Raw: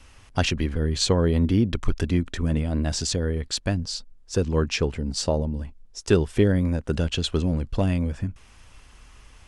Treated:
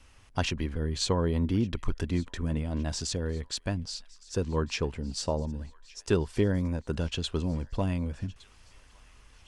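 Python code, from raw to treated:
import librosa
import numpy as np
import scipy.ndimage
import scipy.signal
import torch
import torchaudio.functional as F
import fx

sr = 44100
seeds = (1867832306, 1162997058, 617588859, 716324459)

p1 = fx.dynamic_eq(x, sr, hz=980.0, q=4.6, threshold_db=-50.0, ratio=4.0, max_db=7)
p2 = p1 + fx.echo_wet_highpass(p1, sr, ms=1163, feedback_pct=60, hz=1400.0, wet_db=-21, dry=0)
y = p2 * 10.0 ** (-6.5 / 20.0)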